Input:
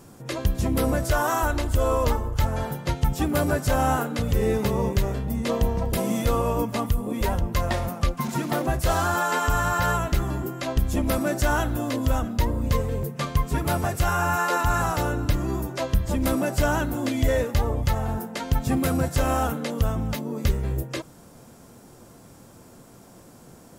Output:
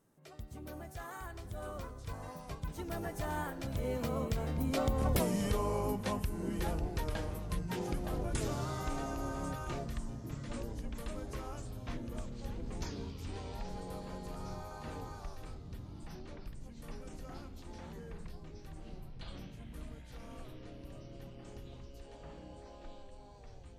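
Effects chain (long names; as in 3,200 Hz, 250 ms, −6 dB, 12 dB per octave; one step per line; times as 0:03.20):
source passing by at 0:05.20, 45 m/s, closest 3 metres
downward compressor 6 to 1, threshold −44 dBFS, peak gain reduction 20 dB
delay with pitch and tempo change per echo 618 ms, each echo −7 semitones, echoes 3, each echo −6 dB
level +14.5 dB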